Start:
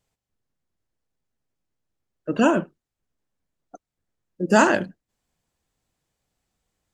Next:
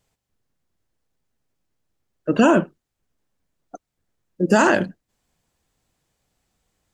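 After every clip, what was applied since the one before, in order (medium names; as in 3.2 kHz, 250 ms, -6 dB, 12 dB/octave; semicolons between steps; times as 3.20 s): loudness maximiser +9 dB; trim -3.5 dB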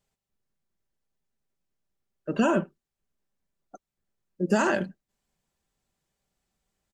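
comb 5.1 ms, depth 34%; trim -8.5 dB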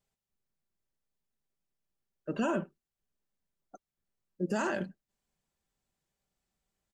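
peak limiter -16.5 dBFS, peak gain reduction 6 dB; trim -5 dB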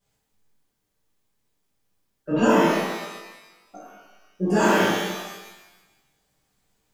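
pitch-shifted reverb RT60 1.1 s, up +12 st, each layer -8 dB, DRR -10.5 dB; trim +2.5 dB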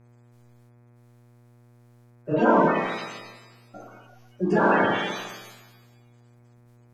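coarse spectral quantiser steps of 30 dB; mains buzz 120 Hz, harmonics 21, -55 dBFS -8 dB/octave; low-pass that closes with the level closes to 2 kHz, closed at -16 dBFS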